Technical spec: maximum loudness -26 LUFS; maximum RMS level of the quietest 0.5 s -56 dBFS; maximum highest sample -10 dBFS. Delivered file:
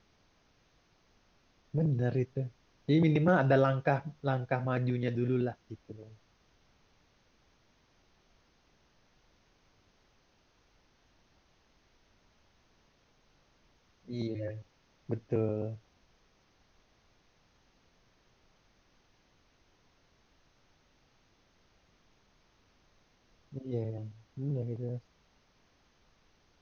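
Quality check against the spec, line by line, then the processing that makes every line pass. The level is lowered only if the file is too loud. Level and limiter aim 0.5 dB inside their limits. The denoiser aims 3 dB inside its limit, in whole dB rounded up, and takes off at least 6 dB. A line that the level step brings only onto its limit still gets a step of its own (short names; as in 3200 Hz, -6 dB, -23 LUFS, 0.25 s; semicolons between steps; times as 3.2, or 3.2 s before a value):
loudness -32.0 LUFS: OK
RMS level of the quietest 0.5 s -69 dBFS: OK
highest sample -13.5 dBFS: OK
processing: none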